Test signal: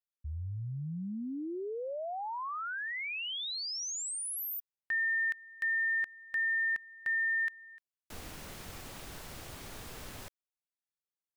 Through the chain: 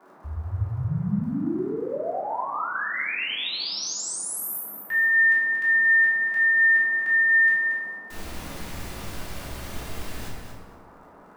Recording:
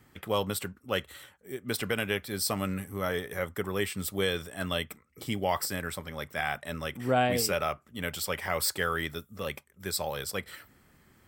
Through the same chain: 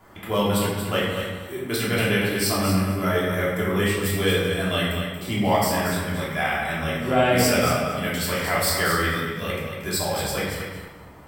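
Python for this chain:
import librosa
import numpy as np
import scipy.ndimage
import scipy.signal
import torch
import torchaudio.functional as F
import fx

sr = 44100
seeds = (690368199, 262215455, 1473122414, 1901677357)

p1 = fx.dmg_crackle(x, sr, seeds[0], per_s=73.0, level_db=-56.0)
p2 = fx.dmg_noise_band(p1, sr, seeds[1], low_hz=180.0, high_hz=1300.0, level_db=-59.0)
p3 = p2 + fx.echo_feedback(p2, sr, ms=231, feedback_pct=18, wet_db=-7.5, dry=0)
y = fx.room_shoebox(p3, sr, seeds[2], volume_m3=490.0, walls='mixed', distance_m=3.1)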